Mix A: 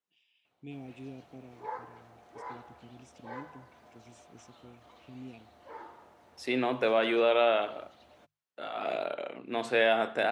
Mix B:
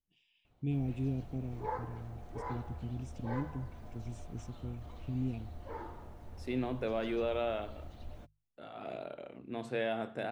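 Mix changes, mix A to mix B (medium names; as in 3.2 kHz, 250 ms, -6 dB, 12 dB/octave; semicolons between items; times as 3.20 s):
second voice -11.5 dB; master: remove frequency weighting A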